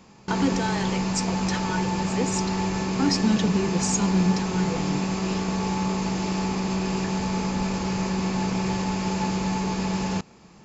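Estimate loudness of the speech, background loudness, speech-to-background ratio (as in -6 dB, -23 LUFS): -27.5 LUFS, -26.5 LUFS, -1.0 dB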